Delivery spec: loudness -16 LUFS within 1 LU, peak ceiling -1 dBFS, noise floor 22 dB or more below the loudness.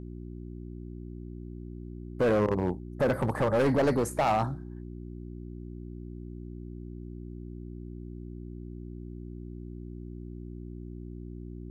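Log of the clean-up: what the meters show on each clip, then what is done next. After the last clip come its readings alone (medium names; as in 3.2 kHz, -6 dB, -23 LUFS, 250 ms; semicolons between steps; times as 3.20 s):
clipped samples 1.4%; clipping level -20.5 dBFS; hum 60 Hz; highest harmonic 360 Hz; hum level -38 dBFS; loudness -33.5 LUFS; peak level -20.5 dBFS; loudness target -16.0 LUFS
-> clip repair -20.5 dBFS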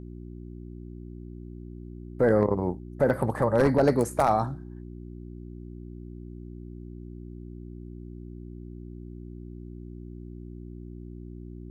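clipped samples 0.0%; hum 60 Hz; highest harmonic 360 Hz; hum level -38 dBFS
-> de-hum 60 Hz, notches 6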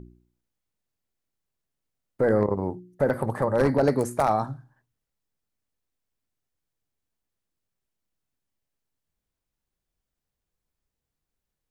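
hum not found; loudness -24.5 LUFS; peak level -10.0 dBFS; loudness target -16.0 LUFS
-> trim +8.5 dB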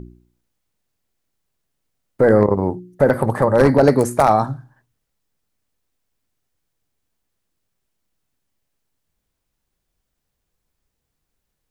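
loudness -16.0 LUFS; peak level -1.5 dBFS; noise floor -77 dBFS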